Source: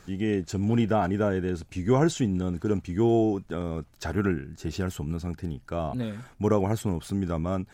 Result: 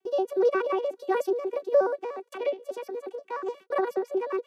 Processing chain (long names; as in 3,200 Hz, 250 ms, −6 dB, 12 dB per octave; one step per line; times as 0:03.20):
vocoder with an arpeggio as carrier major triad, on A3, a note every 104 ms
noise gate with hold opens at −45 dBFS
wrong playback speed 45 rpm record played at 78 rpm